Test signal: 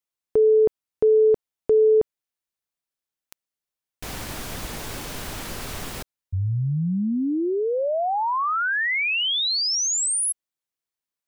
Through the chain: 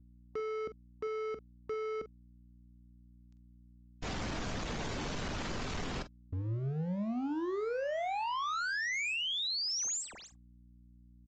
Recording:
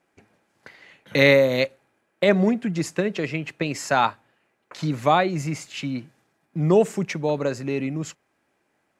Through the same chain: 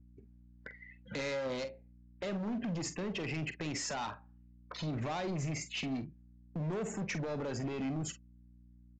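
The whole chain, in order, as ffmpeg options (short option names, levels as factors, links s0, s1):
-filter_complex "[0:a]afftdn=nr=30:nf=-41,equalizer=f=210:t=o:w=0.84:g=3,acrossover=split=6000[s0][s1];[s0]acompressor=threshold=0.0355:ratio=5:attack=0.2:release=83:knee=1:detection=peak[s2];[s1]asoftclip=type=tanh:threshold=0.0188[s3];[s2][s3]amix=inputs=2:normalize=0,aeval=exprs='val(0)+0.00141*(sin(2*PI*60*n/s)+sin(2*PI*2*60*n/s)/2+sin(2*PI*3*60*n/s)/3+sin(2*PI*4*60*n/s)/4+sin(2*PI*5*60*n/s)/5)':c=same,asoftclip=type=hard:threshold=0.02,asplit=2[s4][s5];[s5]adelay=45,volume=0.251[s6];[s4][s6]amix=inputs=2:normalize=0,aresample=16000,aresample=44100"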